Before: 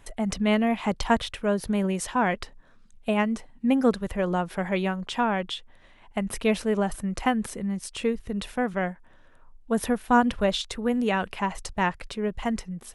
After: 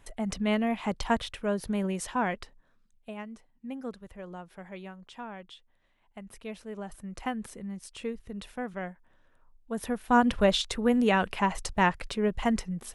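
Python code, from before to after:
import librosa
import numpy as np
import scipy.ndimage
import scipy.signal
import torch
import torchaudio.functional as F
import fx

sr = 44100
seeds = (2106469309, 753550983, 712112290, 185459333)

y = fx.gain(x, sr, db=fx.line((2.2, -4.5), (3.16, -16.5), (6.6, -16.5), (7.26, -9.0), (9.74, -9.0), (10.37, 1.0)))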